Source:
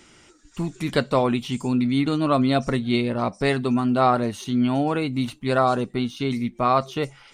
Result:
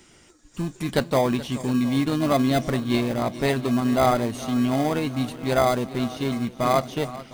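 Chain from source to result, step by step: high shelf 7000 Hz +7.5 dB; swung echo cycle 0.708 s, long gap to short 1.5:1, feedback 53%, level -16 dB; dynamic EQ 640 Hz, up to +5 dB, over -37 dBFS, Q 4.8; in parallel at -6.5 dB: sample-and-hold 32×; on the sum: gain -4 dB

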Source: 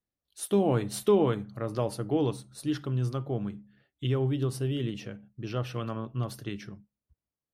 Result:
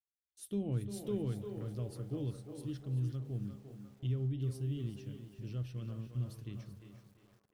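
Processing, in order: gate with hold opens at -46 dBFS; passive tone stack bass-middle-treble 10-0-1; on a send: narrowing echo 0.35 s, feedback 63%, band-pass 960 Hz, level -4 dB; on the sum: lo-fi delay 0.383 s, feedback 35%, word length 11-bit, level -12 dB; gain +7 dB

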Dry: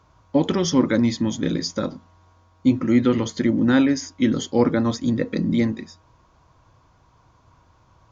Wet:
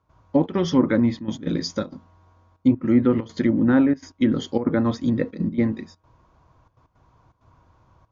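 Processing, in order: treble ducked by the level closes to 1400 Hz, closed at -13.5 dBFS; step gate ".xxxx.xxxxxxx.x" 164 bpm -12 dB; mismatched tape noise reduction decoder only

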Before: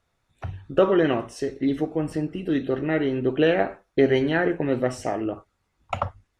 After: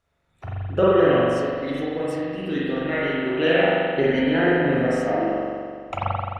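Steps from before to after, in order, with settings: 1.57–3.65 tilt shelf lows -5 dB, about 880 Hz; reverb RT60 2.1 s, pre-delay 42 ms, DRR -7 dB; gain -4 dB

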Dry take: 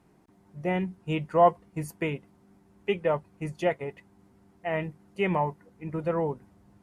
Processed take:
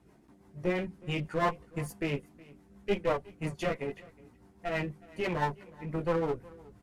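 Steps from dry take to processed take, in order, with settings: in parallel at +1 dB: limiter -20.5 dBFS, peak gain reduction 11.5 dB; on the sum: chorus voices 4, 0.36 Hz, delay 16 ms, depth 2.5 ms; one-sided clip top -34.5 dBFS; rotary speaker horn 6 Hz; echo 0.367 s -22.5 dB

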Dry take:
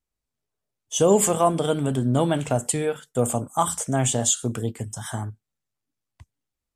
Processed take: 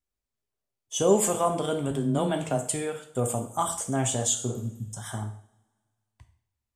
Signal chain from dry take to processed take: 1.91–2.72 frequency shift +13 Hz; 4.51–4.85 spectral repair 290–11000 Hz both; two-slope reverb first 0.55 s, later 1.9 s, from -24 dB, DRR 5.5 dB; gain -5 dB

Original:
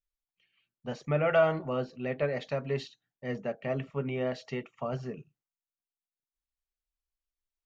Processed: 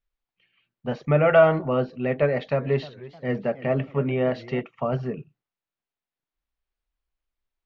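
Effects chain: air absorption 240 m; 2.28–4.61 warbling echo 0.306 s, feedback 44%, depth 189 cents, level -18 dB; gain +9 dB

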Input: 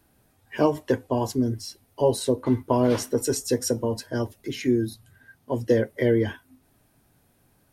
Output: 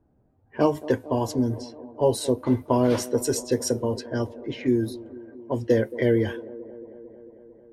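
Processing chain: low-pass opened by the level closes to 640 Hz, open at -21 dBFS; band-limited delay 0.224 s, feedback 74%, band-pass 450 Hz, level -16 dB

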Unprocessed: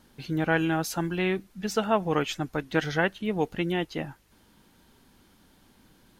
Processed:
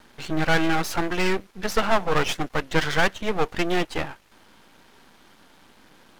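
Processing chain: overdrive pedal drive 16 dB, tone 2300 Hz, clips at -10.5 dBFS; half-wave rectifier; gain +5.5 dB

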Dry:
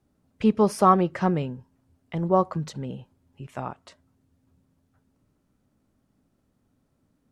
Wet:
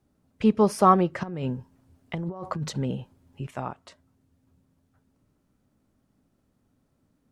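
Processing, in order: 1.23–3.51 negative-ratio compressor -31 dBFS, ratio -1

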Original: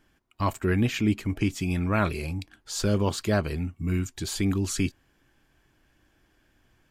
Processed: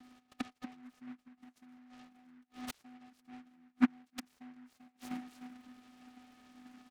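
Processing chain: on a send: frequency-shifting echo 0.304 s, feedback 30%, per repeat +60 Hz, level -23.5 dB; on the sum: flange 0.43 Hz, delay 1.5 ms, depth 7.2 ms, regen +18%; bell 1100 Hz +9.5 dB 0.33 oct; phaser 0.9 Hz, delay 3.4 ms, feedback 46%; flipped gate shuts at -30 dBFS, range -40 dB; in parallel at -11 dB: bit-crush 6-bit; on the sum: bell 6100 Hz +6.5 dB 1.2 oct; vocoder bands 4, square 250 Hz; noise-modulated delay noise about 1400 Hz, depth 0.1 ms; gain +13.5 dB

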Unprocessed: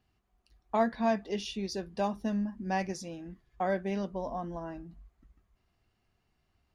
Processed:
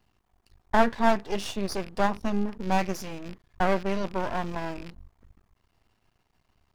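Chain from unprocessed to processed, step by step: rattling part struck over -46 dBFS, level -38 dBFS; bell 940 Hz +6 dB 0.36 oct; half-wave rectifier; gain +8.5 dB

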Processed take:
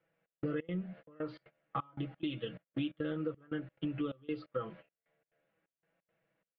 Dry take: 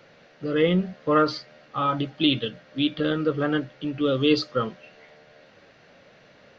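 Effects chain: gate -41 dBFS, range -29 dB; LPF 2800 Hz 24 dB/oct; comb 6.1 ms, depth 69%; compressor 12:1, threshold -34 dBFS, peak gain reduction 22.5 dB; step gate "xxx..xx.x" 175 bpm -24 dB; gain +1 dB

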